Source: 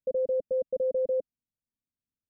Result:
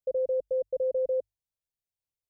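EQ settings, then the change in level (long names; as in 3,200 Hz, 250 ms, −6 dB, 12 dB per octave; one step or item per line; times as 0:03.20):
mains-hum notches 50/100 Hz
phaser with its sweep stopped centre 590 Hz, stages 4
0.0 dB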